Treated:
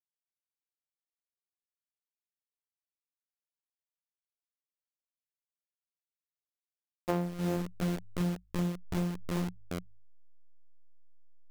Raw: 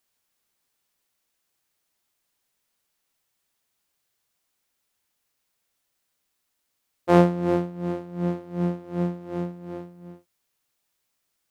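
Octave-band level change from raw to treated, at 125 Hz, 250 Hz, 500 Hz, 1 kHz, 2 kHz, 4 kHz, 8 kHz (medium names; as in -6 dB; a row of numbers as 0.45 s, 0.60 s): -6.5 dB, -8.5 dB, -13.0 dB, -12.5 dB, -7.0 dB, -1.5 dB, no reading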